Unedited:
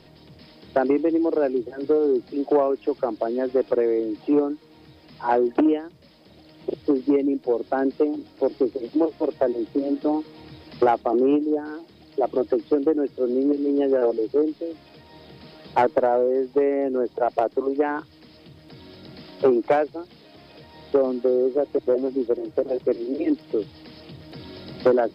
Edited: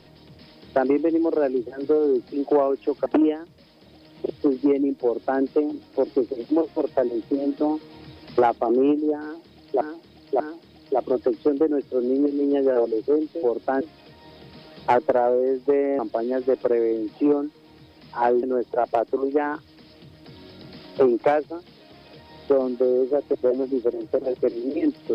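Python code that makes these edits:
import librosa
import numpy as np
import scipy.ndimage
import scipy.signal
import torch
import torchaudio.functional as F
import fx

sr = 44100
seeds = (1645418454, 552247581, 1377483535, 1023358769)

y = fx.edit(x, sr, fx.move(start_s=3.06, length_s=2.44, to_s=16.87),
    fx.duplicate(start_s=7.47, length_s=0.38, to_s=14.69),
    fx.repeat(start_s=11.66, length_s=0.59, count=3), tone=tone)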